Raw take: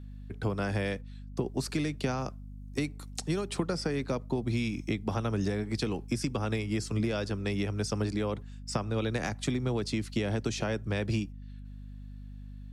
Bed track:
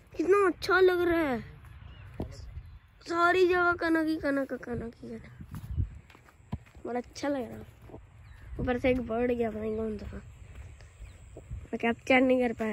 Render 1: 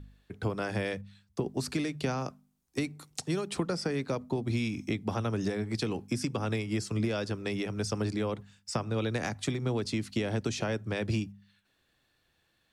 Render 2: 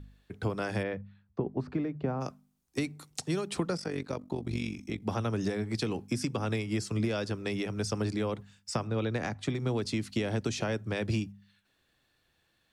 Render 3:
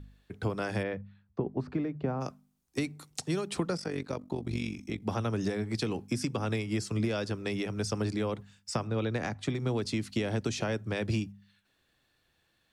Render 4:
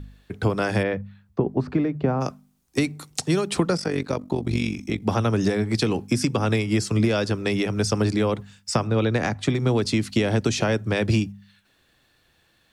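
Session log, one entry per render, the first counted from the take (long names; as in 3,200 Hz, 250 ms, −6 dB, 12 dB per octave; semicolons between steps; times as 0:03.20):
hum removal 50 Hz, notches 5
0:00.82–0:02.20: low-pass filter 1,900 Hz → 1,000 Hz; 0:03.77–0:05.02: amplitude modulation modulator 47 Hz, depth 65%; 0:08.87–0:09.55: low-pass filter 3,000 Hz 6 dB per octave
no processing that can be heard
level +9.5 dB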